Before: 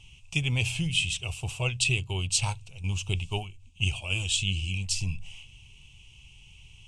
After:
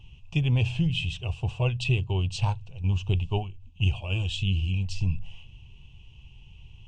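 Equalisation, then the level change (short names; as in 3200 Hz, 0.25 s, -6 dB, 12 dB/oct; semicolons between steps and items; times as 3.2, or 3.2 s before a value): tape spacing loss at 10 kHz 31 dB; bell 2200 Hz -11.5 dB 0.21 oct; notch 1300 Hz, Q 7.6; +5.5 dB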